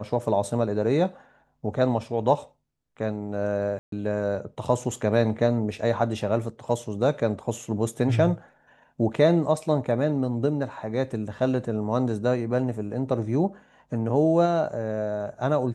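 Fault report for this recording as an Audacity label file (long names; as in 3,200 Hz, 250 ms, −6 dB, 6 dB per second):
3.790000	3.920000	drop-out 133 ms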